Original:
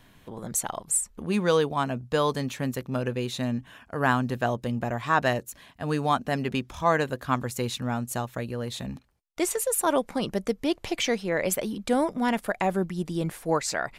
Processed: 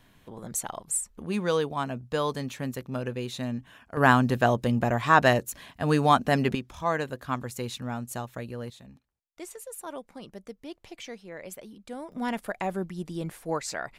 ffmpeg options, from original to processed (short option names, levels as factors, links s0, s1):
-af "asetnsamples=n=441:p=0,asendcmd='3.97 volume volume 4dB;6.55 volume volume -4.5dB;8.7 volume volume -15dB;12.12 volume volume -5dB',volume=0.668"